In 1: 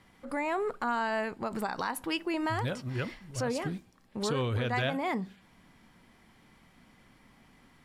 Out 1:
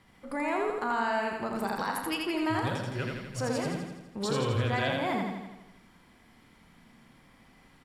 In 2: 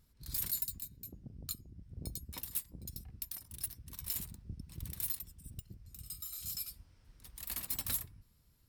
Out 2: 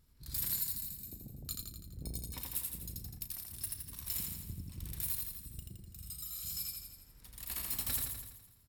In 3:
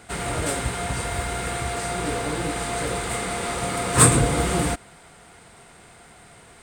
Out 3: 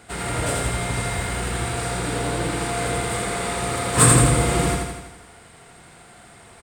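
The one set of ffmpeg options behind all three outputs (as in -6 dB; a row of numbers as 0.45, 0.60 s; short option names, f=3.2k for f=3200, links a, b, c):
-filter_complex "[0:a]bandreject=f=6.2k:w=25,asplit=2[a][b];[b]adelay=35,volume=-12dB[c];[a][c]amix=inputs=2:normalize=0,asplit=2[d][e];[e]aecho=0:1:83|166|249|332|415|498|581|664:0.708|0.411|0.238|0.138|0.0801|0.0465|0.027|0.0156[f];[d][f]amix=inputs=2:normalize=0,volume=-1dB"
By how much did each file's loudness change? +1.5, +1.5, +2.0 LU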